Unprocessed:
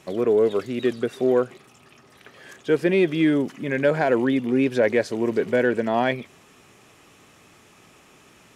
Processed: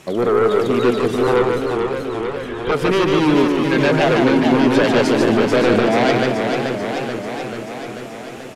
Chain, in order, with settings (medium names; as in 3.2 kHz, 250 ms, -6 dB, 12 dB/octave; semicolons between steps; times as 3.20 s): 1.27–2.72 s: LPC vocoder at 8 kHz pitch kept; sine folder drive 9 dB, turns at -8 dBFS; on a send: delay 148 ms -3.5 dB; on the sum: modulated delay 436 ms, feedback 69%, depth 132 cents, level -5.5 dB; trim -5 dB